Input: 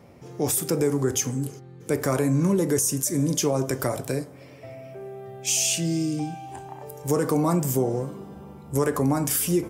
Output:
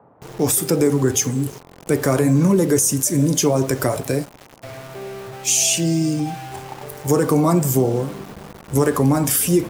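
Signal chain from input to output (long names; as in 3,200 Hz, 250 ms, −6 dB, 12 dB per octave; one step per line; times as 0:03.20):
spectral magnitudes quantised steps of 15 dB
centre clipping without the shift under −40 dBFS
noise in a band 87–1,000 Hz −59 dBFS
level +6.5 dB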